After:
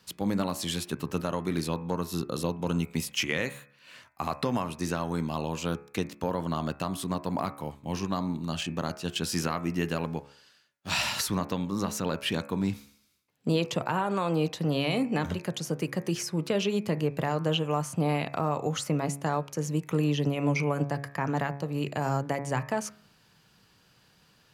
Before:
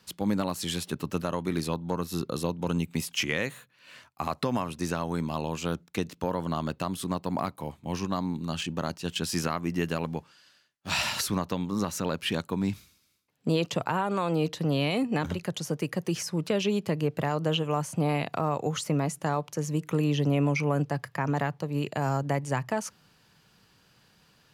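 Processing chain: de-hum 70.35 Hz, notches 37

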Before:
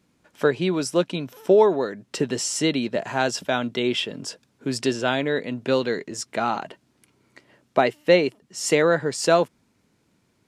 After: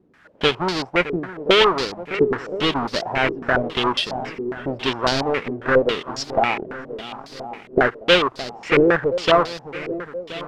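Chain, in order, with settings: square wave that keeps the level; added noise blue -39 dBFS; on a send: shuffle delay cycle 1024 ms, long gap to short 1.5:1, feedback 43%, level -14 dB; on the sum: dynamic bell 200 Hz, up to -5 dB, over -30 dBFS, Q 0.94; step-sequenced low-pass 7.3 Hz 390–4600 Hz; trim -3.5 dB

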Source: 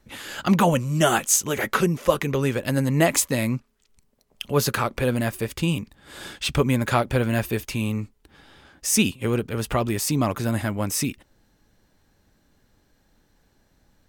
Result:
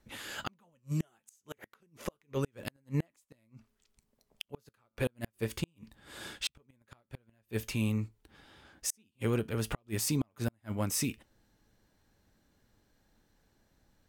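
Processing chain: feedback comb 110 Hz, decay 0.21 s, harmonics all, mix 40%; Chebyshev shaper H 5 -34 dB, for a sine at -8 dBFS; inverted gate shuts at -16 dBFS, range -41 dB; trim -4.5 dB

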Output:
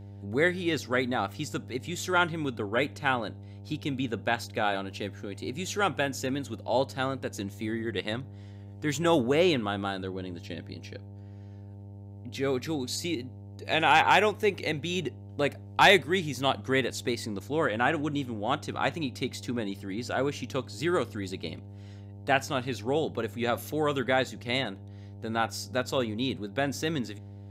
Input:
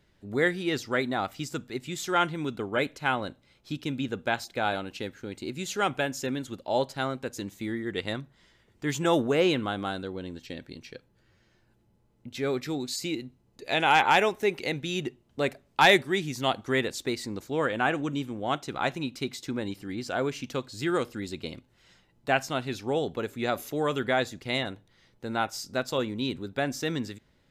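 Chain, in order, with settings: wow and flutter 22 cents; mains buzz 100 Hz, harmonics 9, -44 dBFS -9 dB/octave

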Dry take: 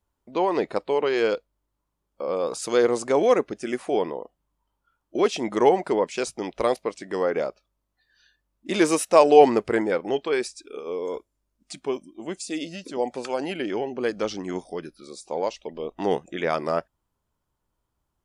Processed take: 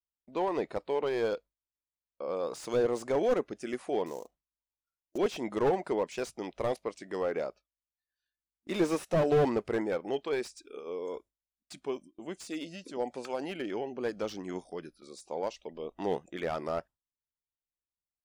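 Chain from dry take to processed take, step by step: 4.06–5.18 s: sample-rate reducer 6.8 kHz, jitter 20%; gate with hold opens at -36 dBFS; slew-rate limiter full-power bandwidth 100 Hz; trim -7.5 dB

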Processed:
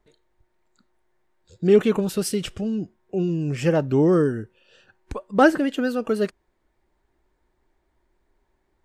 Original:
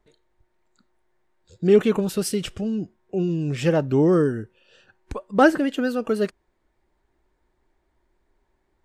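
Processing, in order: 3.30–3.75 s: peaking EQ 3.7 kHz -11 dB 0.27 oct

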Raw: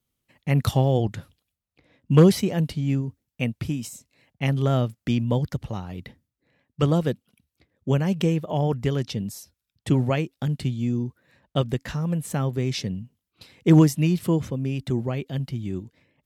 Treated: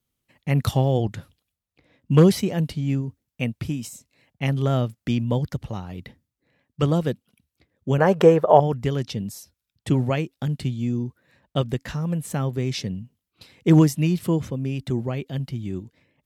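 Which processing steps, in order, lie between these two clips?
7.98–8.60 s: high-order bell 830 Hz +15.5 dB 2.5 oct

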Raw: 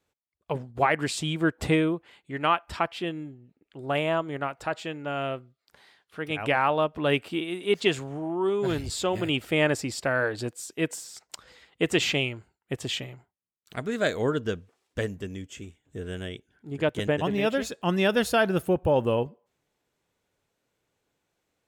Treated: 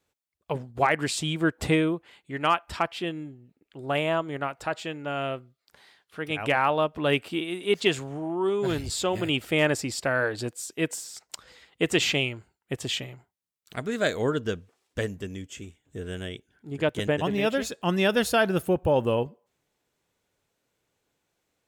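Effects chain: treble shelf 3.5 kHz +3 dB; hard clipper -10.5 dBFS, distortion -39 dB

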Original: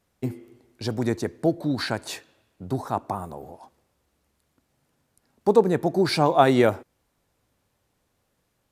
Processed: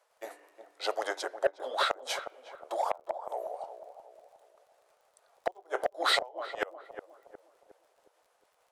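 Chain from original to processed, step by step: rotating-head pitch shifter -2.5 st; steep high-pass 520 Hz 36 dB/octave; peaking EQ 660 Hz +9.5 dB 2.6 oct; inverted gate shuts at -13 dBFS, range -32 dB; crackle 28 per s -55 dBFS; filtered feedback delay 361 ms, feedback 48%, low-pass 900 Hz, level -9 dB; transformer saturation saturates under 830 Hz

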